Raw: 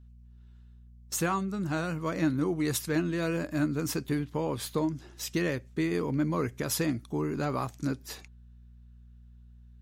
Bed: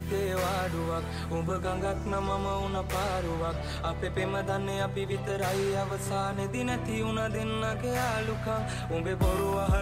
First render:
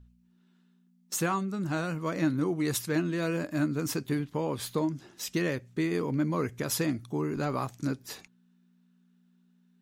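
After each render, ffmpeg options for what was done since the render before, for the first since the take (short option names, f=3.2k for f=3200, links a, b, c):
-af "bandreject=f=60:t=h:w=4,bandreject=f=120:t=h:w=4"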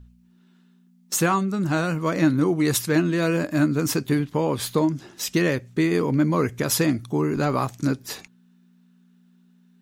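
-af "volume=8dB"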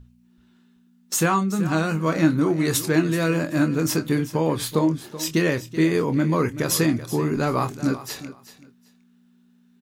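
-filter_complex "[0:a]asplit=2[a][b];[b]adelay=25,volume=-9dB[c];[a][c]amix=inputs=2:normalize=0,aecho=1:1:380|760:0.188|0.0377"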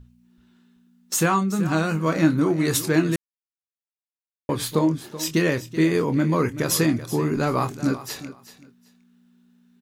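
-filter_complex "[0:a]asplit=3[a][b][c];[a]atrim=end=3.16,asetpts=PTS-STARTPTS,afade=t=out:st=3.156:d=0.004:c=hsin[d];[b]atrim=start=3.16:end=4.49,asetpts=PTS-STARTPTS,volume=0[e];[c]atrim=start=4.49,asetpts=PTS-STARTPTS,afade=t=in:d=0.004:c=hsin[f];[d][e][f]concat=n=3:v=0:a=1"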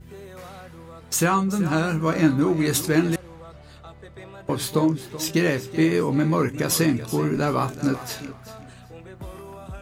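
-filter_complex "[1:a]volume=-11.5dB[a];[0:a][a]amix=inputs=2:normalize=0"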